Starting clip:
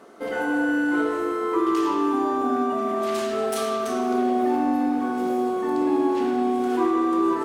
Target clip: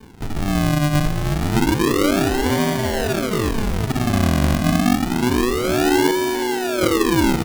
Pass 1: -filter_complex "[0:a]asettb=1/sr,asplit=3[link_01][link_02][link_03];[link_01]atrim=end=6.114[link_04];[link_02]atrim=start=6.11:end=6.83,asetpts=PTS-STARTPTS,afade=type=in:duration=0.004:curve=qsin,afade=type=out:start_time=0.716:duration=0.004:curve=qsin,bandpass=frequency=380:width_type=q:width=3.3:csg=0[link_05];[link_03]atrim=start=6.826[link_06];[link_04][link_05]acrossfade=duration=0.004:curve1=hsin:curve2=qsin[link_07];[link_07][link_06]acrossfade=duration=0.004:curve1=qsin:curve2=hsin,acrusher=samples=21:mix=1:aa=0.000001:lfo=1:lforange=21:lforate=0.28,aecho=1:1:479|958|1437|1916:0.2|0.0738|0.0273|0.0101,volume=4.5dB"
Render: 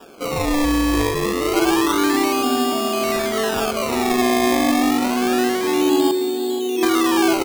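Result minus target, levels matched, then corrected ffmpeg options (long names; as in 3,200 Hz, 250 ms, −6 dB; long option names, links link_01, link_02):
sample-and-hold swept by an LFO: distortion −20 dB
-filter_complex "[0:a]asettb=1/sr,asplit=3[link_01][link_02][link_03];[link_01]atrim=end=6.114[link_04];[link_02]atrim=start=6.11:end=6.83,asetpts=PTS-STARTPTS,afade=type=in:duration=0.004:curve=qsin,afade=type=out:start_time=0.716:duration=0.004:curve=qsin,bandpass=frequency=380:width_type=q:width=3.3:csg=0[link_05];[link_03]atrim=start=6.826[link_06];[link_04][link_05]acrossfade=duration=0.004:curve1=hsin:curve2=qsin[link_07];[link_07][link_06]acrossfade=duration=0.004:curve1=qsin:curve2=hsin,acrusher=samples=66:mix=1:aa=0.000001:lfo=1:lforange=66:lforate=0.28,aecho=1:1:479|958|1437|1916:0.2|0.0738|0.0273|0.0101,volume=4.5dB"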